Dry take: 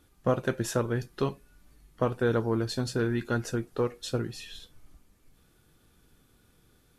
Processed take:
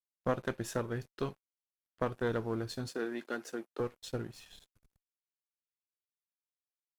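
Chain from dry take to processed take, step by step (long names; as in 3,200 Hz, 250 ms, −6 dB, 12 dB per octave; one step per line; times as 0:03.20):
dead-zone distortion −47.5 dBFS
harmonic generator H 2 −10 dB, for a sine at −13 dBFS
0:02.88–0:03.80: high-pass filter 240 Hz 24 dB per octave
level −6.5 dB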